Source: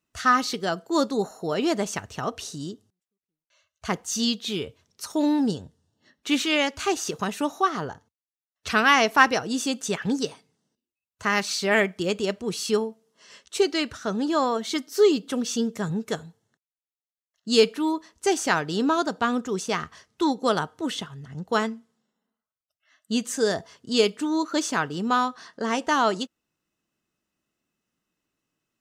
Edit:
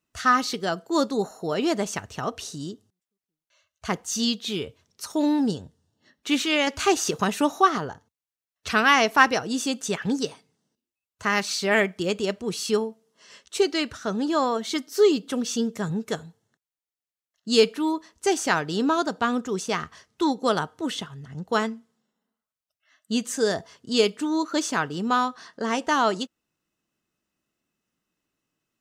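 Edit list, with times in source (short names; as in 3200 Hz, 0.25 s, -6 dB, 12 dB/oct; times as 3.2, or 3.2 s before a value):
6.67–7.78 gain +4 dB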